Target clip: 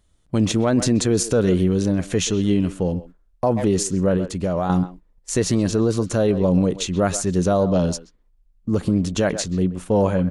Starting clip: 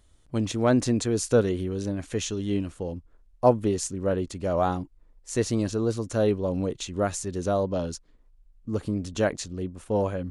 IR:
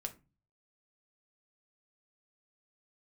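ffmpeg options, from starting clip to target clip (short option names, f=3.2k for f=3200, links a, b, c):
-filter_complex "[0:a]agate=range=-11dB:threshold=-49dB:ratio=16:detection=peak,equalizer=f=180:t=o:w=0.25:g=8,asettb=1/sr,asplit=3[a][b][c];[a]atrim=end=4.164[d];[b]atrim=start=4.16:end=4.7,asetpts=PTS-STARTPTS,afade=t=in:d=0.004:c=qsin,afade=t=out:st=0.536:d=0.004:c=qsin,acompressor=threshold=-28dB:ratio=6[e];[c]atrim=start=4.696[f];[d][e]acrossfade=d=0.004:c1=hsin:c2=qsin[g];[g][f]acrossfade=d=0.004:c1=qsin:c2=hsin,asplit=2[h][i];[i]adelay=130,highpass=300,lowpass=3.4k,asoftclip=type=hard:threshold=-15.5dB,volume=-15dB[j];[h][j]amix=inputs=2:normalize=0,alimiter=level_in=17dB:limit=-1dB:release=50:level=0:latency=1,volume=-8.5dB"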